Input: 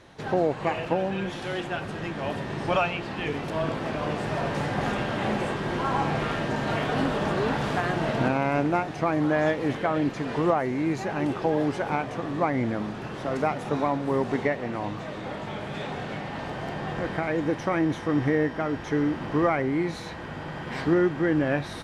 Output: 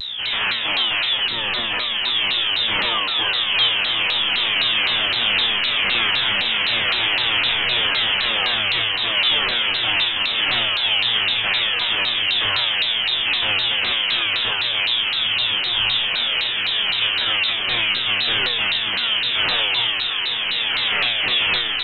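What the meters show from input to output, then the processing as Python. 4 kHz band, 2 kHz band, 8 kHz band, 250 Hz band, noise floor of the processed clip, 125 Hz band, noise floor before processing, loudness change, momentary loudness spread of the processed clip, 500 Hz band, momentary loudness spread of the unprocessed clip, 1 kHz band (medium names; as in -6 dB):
+26.5 dB, +13.0 dB, under -15 dB, -13.0 dB, -23 dBFS, -10.0 dB, -37 dBFS, +9.5 dB, 2 LU, -8.0 dB, 9 LU, 0.0 dB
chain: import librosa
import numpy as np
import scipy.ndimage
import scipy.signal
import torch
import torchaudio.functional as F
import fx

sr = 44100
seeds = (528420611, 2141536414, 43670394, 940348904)

p1 = scipy.signal.sosfilt(scipy.signal.butter(2, 52.0, 'highpass', fs=sr, output='sos'), x)
p2 = fx.add_hum(p1, sr, base_hz=60, snr_db=11)
p3 = fx.fold_sine(p2, sr, drive_db=16, ceiling_db=-9.5)
p4 = fx.freq_invert(p3, sr, carrier_hz=3500)
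p5 = fx.comb_fb(p4, sr, f0_hz=110.0, decay_s=0.89, harmonics='all', damping=0.0, mix_pct=90)
p6 = p5 + fx.echo_diffused(p5, sr, ms=1044, feedback_pct=78, wet_db=-10.5, dry=0)
p7 = fx.vibrato_shape(p6, sr, shape='saw_down', rate_hz=3.9, depth_cents=250.0)
y = p7 * 10.0 ** (5.0 / 20.0)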